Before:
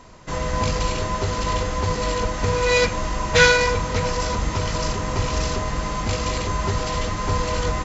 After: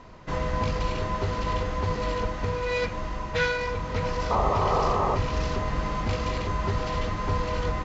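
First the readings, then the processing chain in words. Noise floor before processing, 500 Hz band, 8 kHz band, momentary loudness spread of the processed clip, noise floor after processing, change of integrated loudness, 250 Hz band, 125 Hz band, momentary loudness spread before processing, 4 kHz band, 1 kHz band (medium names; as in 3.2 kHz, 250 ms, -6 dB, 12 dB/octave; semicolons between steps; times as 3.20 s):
-28 dBFS, -5.0 dB, no reading, 6 LU, -34 dBFS, -5.5 dB, -4.0 dB, -4.0 dB, 8 LU, -11.0 dB, -3.0 dB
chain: gain riding within 5 dB 0.5 s; painted sound noise, 4.30–5.16 s, 360–1300 Hz -19 dBFS; distance through air 160 m; trim -5.5 dB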